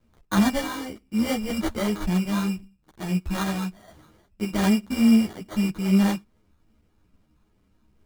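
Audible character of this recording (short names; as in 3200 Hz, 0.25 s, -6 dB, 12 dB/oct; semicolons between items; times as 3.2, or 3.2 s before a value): a buzz of ramps at a fixed pitch in blocks of 8 samples; phasing stages 6, 2.4 Hz, lowest notch 740–1900 Hz; aliases and images of a low sample rate 2600 Hz, jitter 0%; a shimmering, thickened sound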